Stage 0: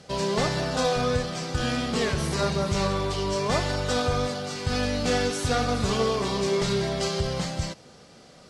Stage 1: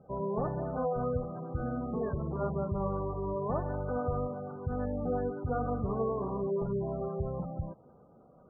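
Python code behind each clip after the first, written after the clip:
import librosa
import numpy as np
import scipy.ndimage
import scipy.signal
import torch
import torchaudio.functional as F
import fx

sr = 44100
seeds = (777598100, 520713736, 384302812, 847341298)

y = scipy.signal.sosfilt(scipy.signal.butter(4, 1300.0, 'lowpass', fs=sr, output='sos'), x)
y = fx.spec_gate(y, sr, threshold_db=-20, keep='strong')
y = y * librosa.db_to_amplitude(-6.5)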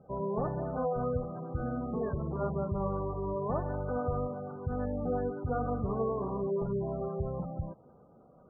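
y = x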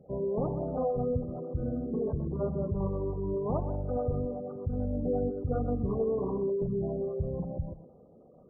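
y = fx.envelope_sharpen(x, sr, power=2.0)
y = y + 10.0 ** (-12.0 / 20.0) * np.pad(y, (int(126 * sr / 1000.0), 0))[:len(y)]
y = y * librosa.db_to_amplitude(2.0)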